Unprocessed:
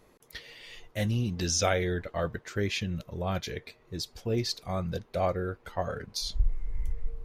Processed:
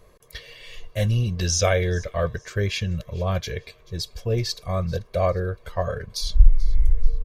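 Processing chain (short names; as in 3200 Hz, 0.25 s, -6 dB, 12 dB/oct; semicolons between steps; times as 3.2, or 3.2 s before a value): low shelf 90 Hz +7.5 dB; comb 1.8 ms, depth 61%; thin delay 0.436 s, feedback 31%, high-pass 2800 Hz, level -20.5 dB; gain +3 dB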